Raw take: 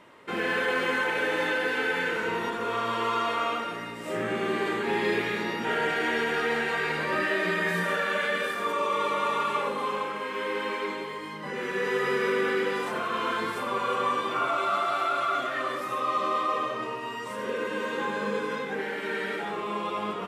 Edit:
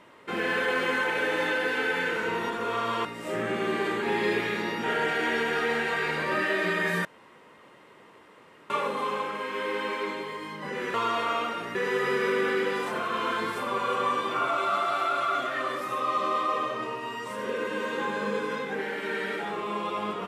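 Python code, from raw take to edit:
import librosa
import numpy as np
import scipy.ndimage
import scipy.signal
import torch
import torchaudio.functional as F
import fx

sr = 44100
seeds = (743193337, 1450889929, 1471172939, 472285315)

y = fx.edit(x, sr, fx.move(start_s=3.05, length_s=0.81, to_s=11.75),
    fx.room_tone_fill(start_s=7.86, length_s=1.65), tone=tone)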